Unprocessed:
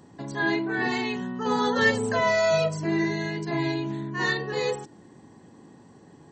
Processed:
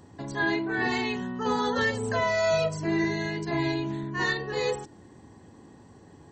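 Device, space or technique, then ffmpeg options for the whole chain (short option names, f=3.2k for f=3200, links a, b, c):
car stereo with a boomy subwoofer: -af "lowshelf=f=110:t=q:w=1.5:g=7.5,alimiter=limit=-16dB:level=0:latency=1:release=429"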